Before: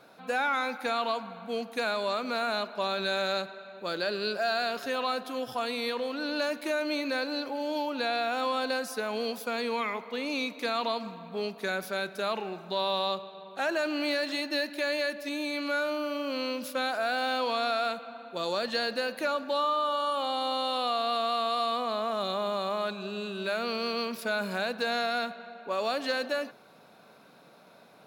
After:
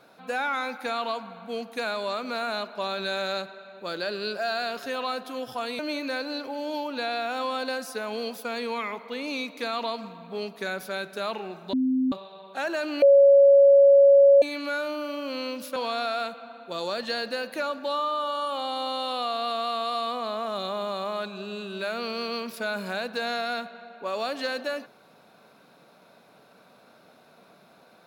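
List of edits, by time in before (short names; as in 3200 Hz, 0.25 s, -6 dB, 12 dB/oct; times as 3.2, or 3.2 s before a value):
5.79–6.81 cut
12.75–13.14 bleep 259 Hz -20.5 dBFS
14.04–15.44 bleep 558 Hz -11.5 dBFS
16.78–17.41 cut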